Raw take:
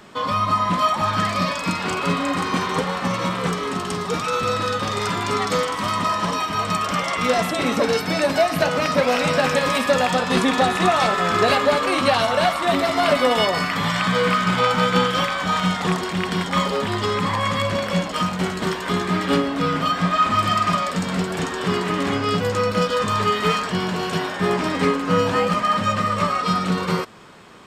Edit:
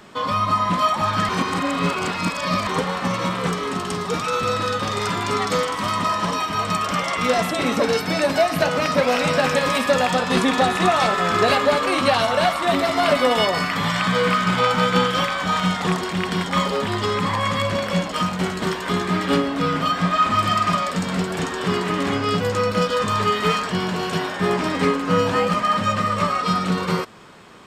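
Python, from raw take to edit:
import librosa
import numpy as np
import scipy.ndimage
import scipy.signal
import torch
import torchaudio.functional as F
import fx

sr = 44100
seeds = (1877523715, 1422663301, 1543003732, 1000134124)

y = fx.edit(x, sr, fx.reverse_span(start_s=1.29, length_s=1.38), tone=tone)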